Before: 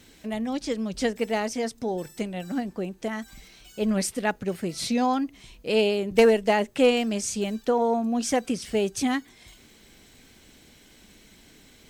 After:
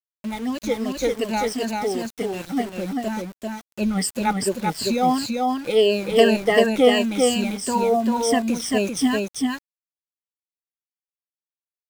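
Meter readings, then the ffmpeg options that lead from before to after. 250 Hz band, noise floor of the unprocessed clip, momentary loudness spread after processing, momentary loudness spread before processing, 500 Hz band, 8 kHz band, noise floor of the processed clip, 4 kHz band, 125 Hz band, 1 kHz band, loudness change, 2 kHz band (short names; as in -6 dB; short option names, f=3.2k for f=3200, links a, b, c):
+4.5 dB, -55 dBFS, 11 LU, 12 LU, +4.0 dB, +4.5 dB, under -85 dBFS, +6.0 dB, +4.0 dB, +5.5 dB, +4.0 dB, +4.0 dB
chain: -af "afftfilt=real='re*pow(10,19/40*sin(2*PI*(1.4*log(max(b,1)*sr/1024/100)/log(2)-(-2.8)*(pts-256)/sr)))':imag='im*pow(10,19/40*sin(2*PI*(1.4*log(max(b,1)*sr/1024/100)/log(2)-(-2.8)*(pts-256)/sr)))':win_size=1024:overlap=0.75,aeval=exprs='val(0)*gte(abs(val(0)),0.0211)':c=same,aecho=1:1:392:0.708,volume=-1dB"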